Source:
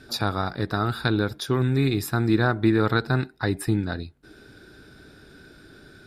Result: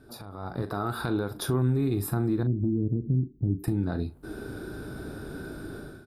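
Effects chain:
0:02.43–0:03.64: inverse Chebyshev band-stop filter 980–9,500 Hz, stop band 60 dB
harmonic and percussive parts rebalanced percussive −8 dB
flat-topped bell 3,400 Hz −11.5 dB 2.5 octaves
harmonic and percussive parts rebalanced harmonic −4 dB
0:00.62–0:01.35: low-shelf EQ 260 Hz −10 dB
downward compressor 6 to 1, threshold −39 dBFS, peak gain reduction 18 dB
brickwall limiter −34 dBFS, peak gain reduction 7.5 dB
automatic gain control gain up to 16.5 dB
double-tracking delay 40 ms −11.5 dB

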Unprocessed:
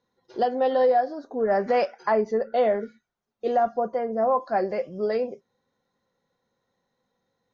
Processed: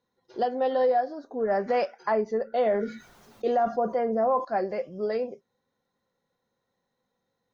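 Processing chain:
0:02.66–0:04.45: envelope flattener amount 50%
level −3 dB

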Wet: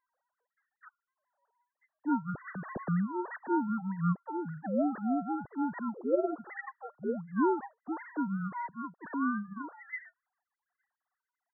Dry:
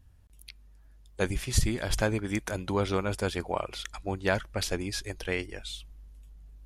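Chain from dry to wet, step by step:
three sine waves on the formant tracks
wrong playback speed 78 rpm record played at 45 rpm
level −3 dB

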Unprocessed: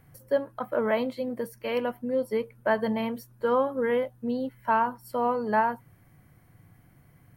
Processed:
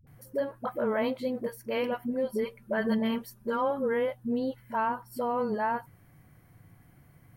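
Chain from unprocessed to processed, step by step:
0:02.05–0:03.67: comb filter 5.1 ms, depth 67%
brickwall limiter −21 dBFS, peak gain reduction 7.5 dB
all-pass dispersion highs, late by 71 ms, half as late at 360 Hz

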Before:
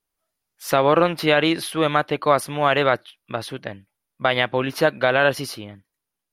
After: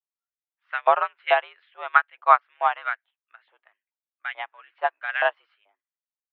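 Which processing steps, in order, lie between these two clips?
0:02.54–0:05.09: gain on one half-wave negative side −3 dB
auto-filter high-pass saw up 2.3 Hz 670–1,900 Hz
single-sideband voice off tune +78 Hz 200–3,000 Hz
expander for the loud parts 2.5 to 1, over −27 dBFS

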